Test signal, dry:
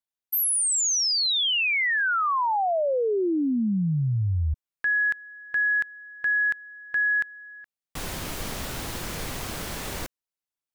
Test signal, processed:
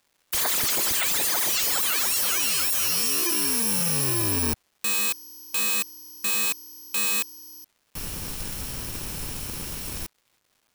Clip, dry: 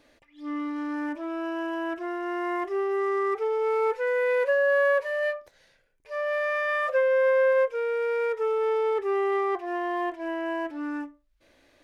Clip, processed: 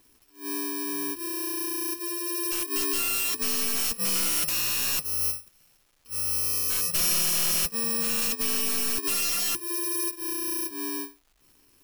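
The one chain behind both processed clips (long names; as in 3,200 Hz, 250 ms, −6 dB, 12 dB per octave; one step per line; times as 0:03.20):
samples in bit-reversed order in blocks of 64 samples
wrap-around overflow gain 21 dB
surface crackle 560 per second −54 dBFS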